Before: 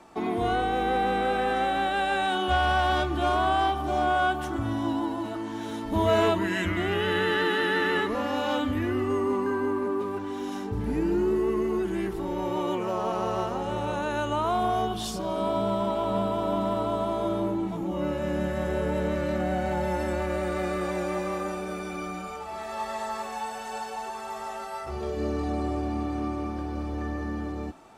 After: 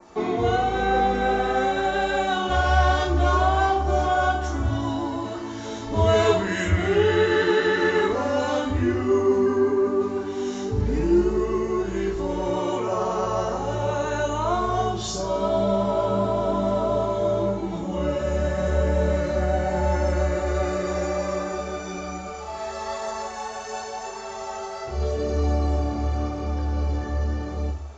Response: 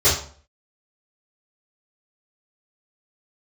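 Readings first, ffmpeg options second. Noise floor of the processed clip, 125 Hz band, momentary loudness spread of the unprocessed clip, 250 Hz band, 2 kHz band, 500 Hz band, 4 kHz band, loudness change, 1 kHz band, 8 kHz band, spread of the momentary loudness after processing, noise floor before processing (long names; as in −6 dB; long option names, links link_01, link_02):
−34 dBFS, +8.0 dB, 10 LU, +2.0 dB, +2.0 dB, +5.5 dB, +1.0 dB, +4.0 dB, +2.5 dB, +7.0 dB, 11 LU, −36 dBFS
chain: -filter_complex "[0:a]adynamicequalizer=threshold=0.00398:dfrequency=3200:dqfactor=1.6:tfrequency=3200:tqfactor=1.6:attack=5:release=100:ratio=0.375:range=3:mode=cutabove:tftype=bell,flanger=delay=3.5:depth=5:regen=-57:speed=0.9:shape=sinusoidal,asplit=2[link_01][link_02];[1:a]atrim=start_sample=2205,highshelf=frequency=3600:gain=11[link_03];[link_02][link_03]afir=irnorm=-1:irlink=0,volume=-21dB[link_04];[link_01][link_04]amix=inputs=2:normalize=0,aresample=16000,aresample=44100,volume=5dB"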